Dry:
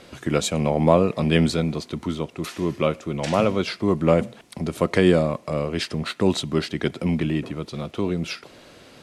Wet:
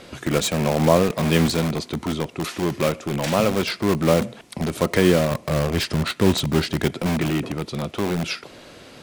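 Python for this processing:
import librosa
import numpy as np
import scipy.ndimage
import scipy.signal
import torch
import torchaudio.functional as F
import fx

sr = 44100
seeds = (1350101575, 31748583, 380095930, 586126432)

p1 = fx.low_shelf(x, sr, hz=120.0, db=11.0, at=(5.31, 6.88))
p2 = (np.mod(10.0 ** (20.0 / 20.0) * p1 + 1.0, 2.0) - 1.0) / 10.0 ** (20.0 / 20.0)
y = p1 + (p2 * librosa.db_to_amplitude(-5.0))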